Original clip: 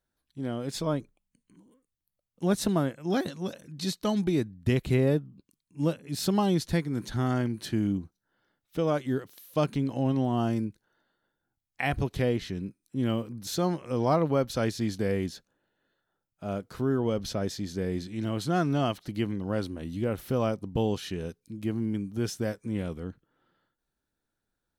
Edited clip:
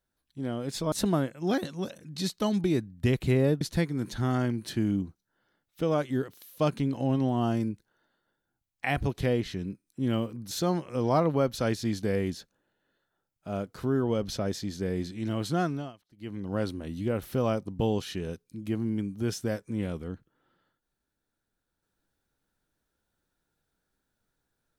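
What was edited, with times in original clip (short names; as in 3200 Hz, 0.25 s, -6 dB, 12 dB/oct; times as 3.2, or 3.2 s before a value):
0.92–2.55 cut
5.24–6.57 cut
18.51–19.5 dip -24 dB, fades 0.38 s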